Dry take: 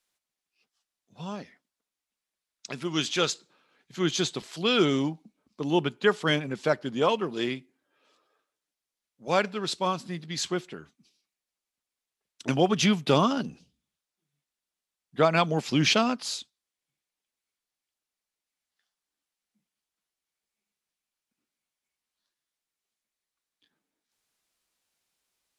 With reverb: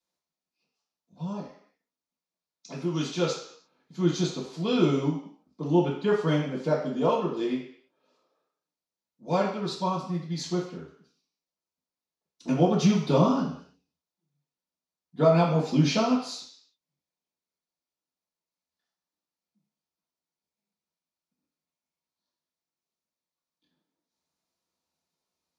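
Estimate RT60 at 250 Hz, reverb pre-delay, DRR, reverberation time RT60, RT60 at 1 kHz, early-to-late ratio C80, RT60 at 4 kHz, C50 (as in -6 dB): 0.55 s, 3 ms, -11.5 dB, 0.60 s, 0.60 s, 8.0 dB, 0.70 s, 4.5 dB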